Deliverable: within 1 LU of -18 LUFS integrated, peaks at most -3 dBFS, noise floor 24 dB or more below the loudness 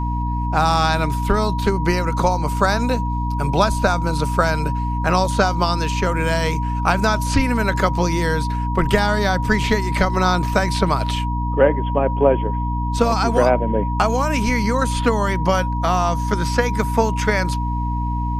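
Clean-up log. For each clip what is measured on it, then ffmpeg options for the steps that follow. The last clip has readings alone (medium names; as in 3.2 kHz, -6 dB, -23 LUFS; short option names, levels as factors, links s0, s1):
hum 60 Hz; highest harmonic 300 Hz; hum level -20 dBFS; steady tone 960 Hz; tone level -26 dBFS; loudness -19.5 LUFS; peak level -1.5 dBFS; loudness target -18.0 LUFS
-> -af "bandreject=f=60:t=h:w=4,bandreject=f=120:t=h:w=4,bandreject=f=180:t=h:w=4,bandreject=f=240:t=h:w=4,bandreject=f=300:t=h:w=4"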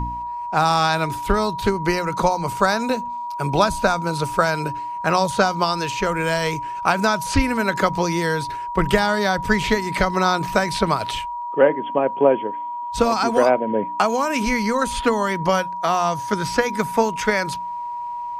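hum not found; steady tone 960 Hz; tone level -26 dBFS
-> -af "bandreject=f=960:w=30"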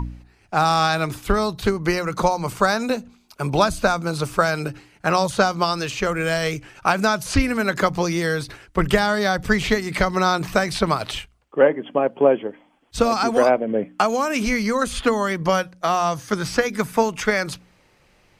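steady tone not found; loudness -21.0 LUFS; peak level -3.5 dBFS; loudness target -18.0 LUFS
-> -af "volume=1.41,alimiter=limit=0.708:level=0:latency=1"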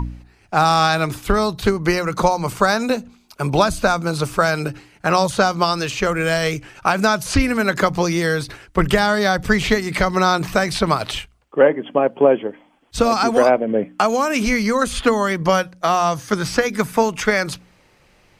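loudness -18.5 LUFS; peak level -3.0 dBFS; noise floor -55 dBFS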